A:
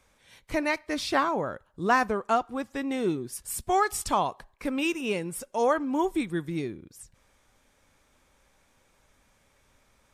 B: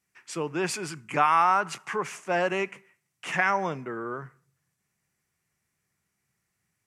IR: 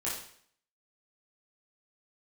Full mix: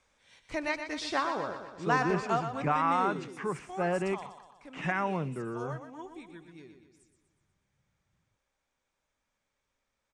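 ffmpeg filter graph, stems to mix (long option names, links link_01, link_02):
-filter_complex "[0:a]lowshelf=frequency=370:gain=-5.5,volume=-4.5dB,afade=type=out:start_time=3.01:duration=0.29:silence=0.251189,asplit=2[link_01][link_02];[link_02]volume=-8.5dB[link_03];[1:a]aemphasis=mode=reproduction:type=riaa,adelay=1500,volume=-6.5dB[link_04];[link_03]aecho=0:1:122|244|366|488|610|732|854|976:1|0.54|0.292|0.157|0.085|0.0459|0.0248|0.0134[link_05];[link_01][link_04][link_05]amix=inputs=3:normalize=0,lowpass=frequency=8300:width=0.5412,lowpass=frequency=8300:width=1.3066"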